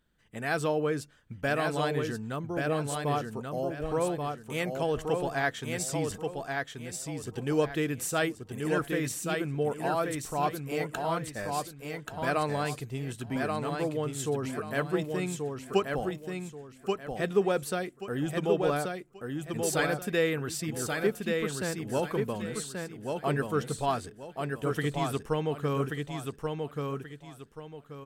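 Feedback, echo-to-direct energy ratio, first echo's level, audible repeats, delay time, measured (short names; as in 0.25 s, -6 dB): 30%, -3.5 dB, -4.0 dB, 3, 1.132 s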